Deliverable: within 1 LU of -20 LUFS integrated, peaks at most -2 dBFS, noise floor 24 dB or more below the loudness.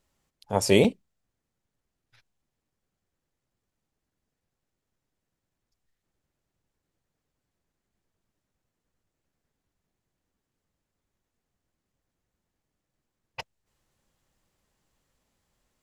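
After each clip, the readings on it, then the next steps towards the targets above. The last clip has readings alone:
dropouts 1; longest dropout 4.4 ms; loudness -23.5 LUFS; peak level -6.0 dBFS; loudness target -20.0 LUFS
-> interpolate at 0.84 s, 4.4 ms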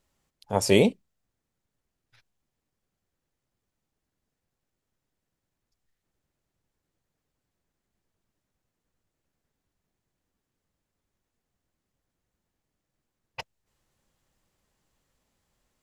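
dropouts 0; loudness -23.5 LUFS; peak level -6.0 dBFS; loudness target -20.0 LUFS
-> trim +3.5 dB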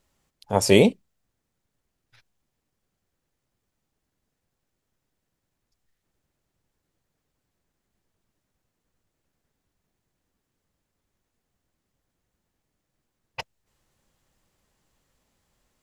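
loudness -20.0 LUFS; peak level -2.5 dBFS; noise floor -81 dBFS

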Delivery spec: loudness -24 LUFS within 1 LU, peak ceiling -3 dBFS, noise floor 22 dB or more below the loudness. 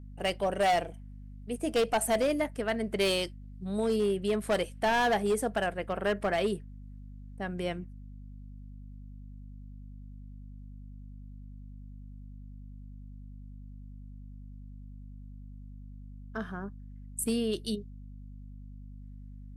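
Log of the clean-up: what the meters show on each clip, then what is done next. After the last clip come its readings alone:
clipped samples 1.2%; clipping level -22.0 dBFS; hum 50 Hz; highest harmonic 250 Hz; hum level -43 dBFS; loudness -30.5 LUFS; peak level -22.0 dBFS; loudness target -24.0 LUFS
-> clip repair -22 dBFS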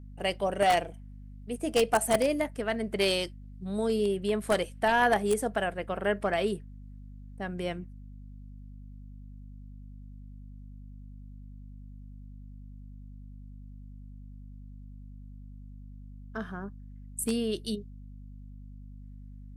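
clipped samples 0.0%; hum 50 Hz; highest harmonic 250 Hz; hum level -43 dBFS
-> hum notches 50/100/150/200/250 Hz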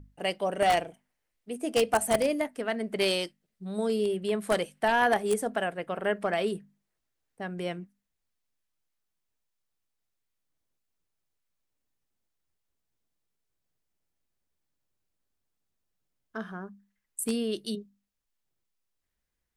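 hum not found; loudness -29.0 LUFS; peak level -12.5 dBFS; loudness target -24.0 LUFS
-> trim +5 dB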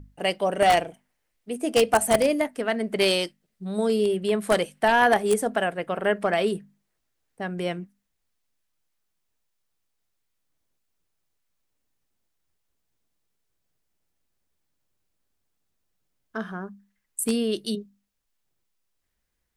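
loudness -24.0 LUFS; peak level -7.5 dBFS; noise floor -77 dBFS

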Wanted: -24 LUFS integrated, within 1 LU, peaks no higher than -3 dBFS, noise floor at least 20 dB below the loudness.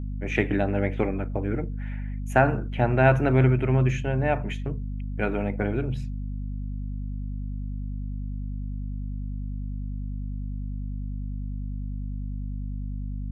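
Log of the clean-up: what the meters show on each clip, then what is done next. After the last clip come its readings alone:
hum 50 Hz; highest harmonic 250 Hz; hum level -29 dBFS; loudness -28.0 LUFS; peak level -3.5 dBFS; loudness target -24.0 LUFS
-> hum notches 50/100/150/200/250 Hz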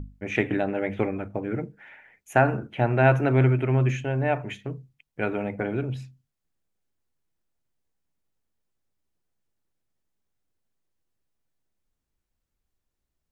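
hum not found; loudness -25.0 LUFS; peak level -4.5 dBFS; loudness target -24.0 LUFS
-> trim +1 dB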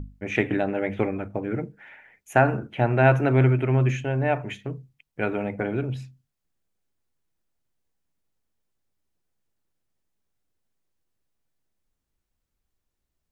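loudness -24.0 LUFS; peak level -3.5 dBFS; noise floor -81 dBFS

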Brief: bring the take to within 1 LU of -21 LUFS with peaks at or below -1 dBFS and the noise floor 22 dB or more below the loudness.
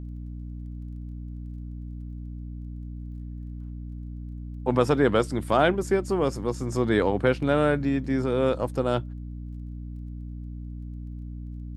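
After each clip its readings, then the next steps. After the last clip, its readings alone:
tick rate 15 per s; hum 60 Hz; highest harmonic 300 Hz; hum level -33 dBFS; loudness -24.5 LUFS; peak level -6.0 dBFS; loudness target -21.0 LUFS
-> de-click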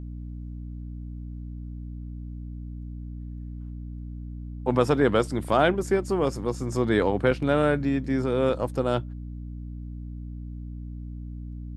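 tick rate 0 per s; hum 60 Hz; highest harmonic 300 Hz; hum level -33 dBFS
-> de-hum 60 Hz, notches 5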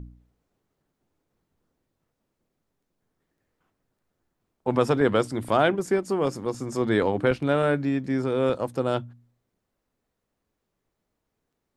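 hum not found; loudness -25.0 LUFS; peak level -6.0 dBFS; loudness target -21.0 LUFS
-> trim +4 dB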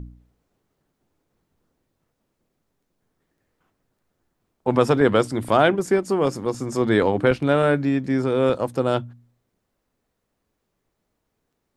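loudness -21.0 LUFS; peak level -2.0 dBFS; noise floor -77 dBFS

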